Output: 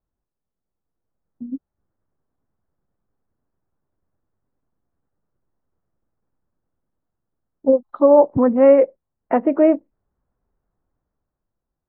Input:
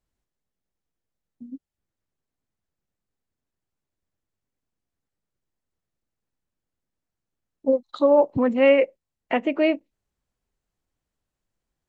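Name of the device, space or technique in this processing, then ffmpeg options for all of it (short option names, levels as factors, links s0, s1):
action camera in a waterproof case: -af "lowpass=f=1400:w=0.5412,lowpass=f=1400:w=1.3066,dynaudnorm=f=160:g=13:m=2.99" -ar 48000 -c:a aac -b:a 48k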